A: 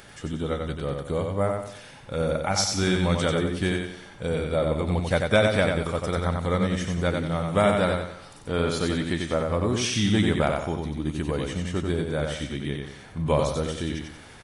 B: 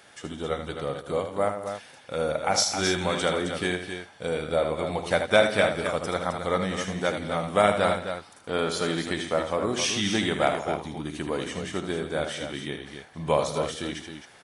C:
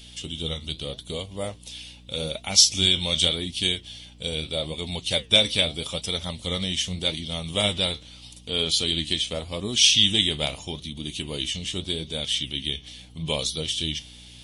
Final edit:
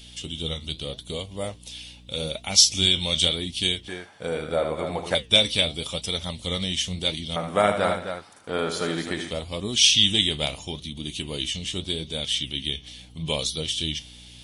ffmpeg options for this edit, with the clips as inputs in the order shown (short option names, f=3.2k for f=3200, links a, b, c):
-filter_complex "[1:a]asplit=2[a][b];[2:a]asplit=3[c][d][e];[c]atrim=end=3.882[f];[a]atrim=start=3.878:end=5.152[g];[d]atrim=start=5.148:end=7.362[h];[b]atrim=start=7.358:end=9.312[i];[e]atrim=start=9.308[j];[f][g]acrossfade=d=0.004:c1=hsin:c2=hsin[k];[k][h]acrossfade=d=0.004:c1=hsin:c2=hsin[l];[l][i]acrossfade=d=0.004:c1=hsin:c2=hsin[m];[m][j]acrossfade=d=0.004:c1=hsin:c2=hsin"